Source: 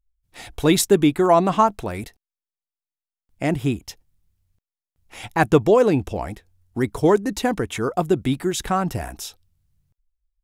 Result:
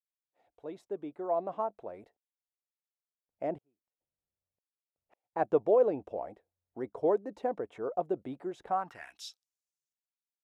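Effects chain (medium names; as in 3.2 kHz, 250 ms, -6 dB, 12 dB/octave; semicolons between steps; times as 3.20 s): fade-in on the opening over 2.79 s; band-pass sweep 580 Hz -> 6.5 kHz, 8.67–9.38 s; 3.58–5.33 s: inverted gate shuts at -47 dBFS, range -39 dB; trim -5.5 dB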